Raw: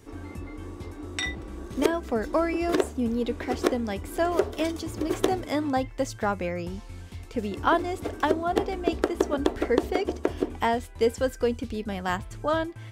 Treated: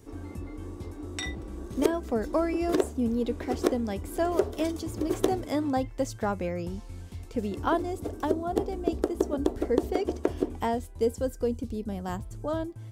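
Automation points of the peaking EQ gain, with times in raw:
peaking EQ 2.1 kHz 2.5 oct
7.55 s -6.5 dB
8.03 s -13 dB
9.64 s -13 dB
10.20 s -4.5 dB
11.12 s -15 dB

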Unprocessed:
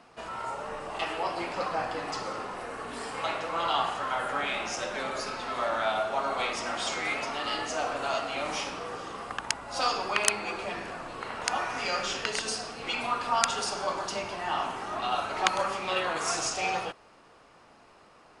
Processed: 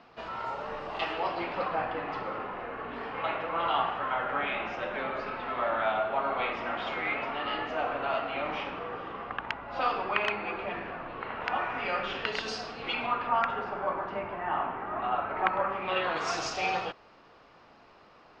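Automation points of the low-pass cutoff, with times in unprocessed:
low-pass 24 dB/octave
1.05 s 4.7 kHz
1.98 s 2.9 kHz
12.03 s 2.9 kHz
12.59 s 5.1 kHz
13.52 s 2.1 kHz
15.68 s 2.1 kHz
16.29 s 5.1 kHz

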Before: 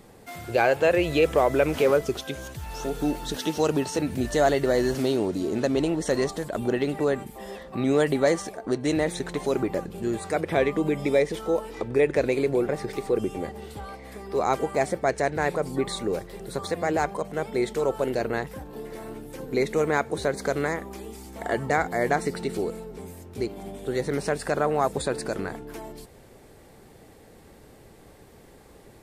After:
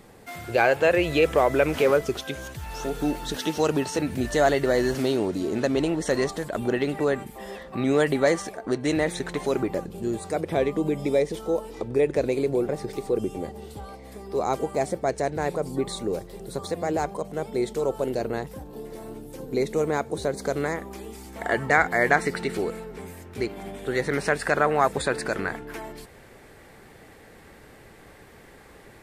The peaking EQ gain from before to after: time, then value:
peaking EQ 1.8 kHz 1.5 oct
9.48 s +3 dB
10.05 s -6.5 dB
20.33 s -6.5 dB
20.77 s -0.5 dB
21.85 s +9 dB

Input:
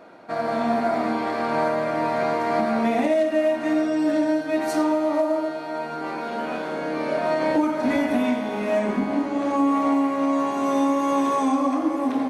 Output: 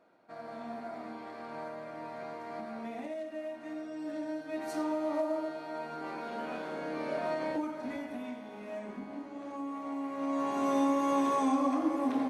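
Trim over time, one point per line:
3.83 s -19 dB
5.11 s -10 dB
7.24 s -10 dB
8.11 s -18.5 dB
9.84 s -18.5 dB
10.56 s -7 dB

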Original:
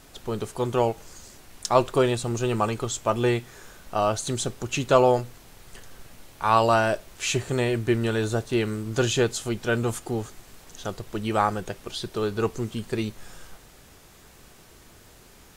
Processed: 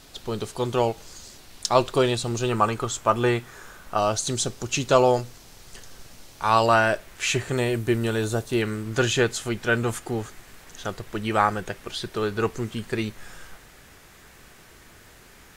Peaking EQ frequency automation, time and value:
peaking EQ +6.5 dB 1.1 oct
4.2 kHz
from 2.49 s 1.3 kHz
from 3.98 s 5.4 kHz
from 6.66 s 1.8 kHz
from 7.57 s 13 kHz
from 8.62 s 1.8 kHz

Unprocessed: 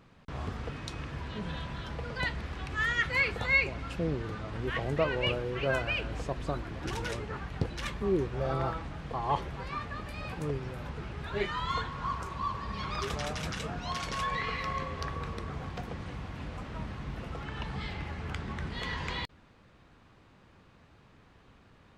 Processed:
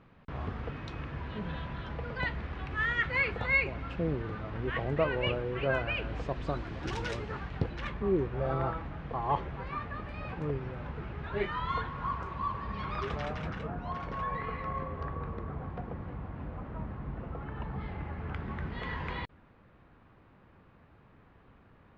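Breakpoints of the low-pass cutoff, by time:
5.92 s 2.7 kHz
6.66 s 5.4 kHz
7.31 s 5.4 kHz
7.83 s 2.4 kHz
13.23 s 2.4 kHz
13.75 s 1.3 kHz
17.84 s 1.3 kHz
18.53 s 2.1 kHz

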